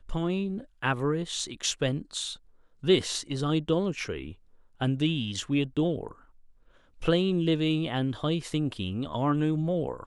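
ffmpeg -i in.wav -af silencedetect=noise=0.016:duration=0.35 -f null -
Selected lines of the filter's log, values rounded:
silence_start: 2.34
silence_end: 2.84 | silence_duration: 0.49
silence_start: 4.32
silence_end: 4.81 | silence_duration: 0.49
silence_start: 6.11
silence_end: 7.02 | silence_duration: 0.90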